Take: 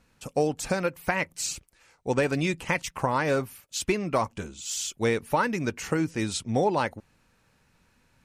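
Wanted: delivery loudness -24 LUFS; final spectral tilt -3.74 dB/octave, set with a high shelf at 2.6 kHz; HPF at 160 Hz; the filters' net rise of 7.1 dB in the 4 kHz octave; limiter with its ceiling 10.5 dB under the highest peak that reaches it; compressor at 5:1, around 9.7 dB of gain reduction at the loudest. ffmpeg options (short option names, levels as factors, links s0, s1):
-af "highpass=160,highshelf=f=2600:g=6,equalizer=f=4000:t=o:g=3.5,acompressor=threshold=0.0316:ratio=5,volume=3.98,alimiter=limit=0.237:level=0:latency=1"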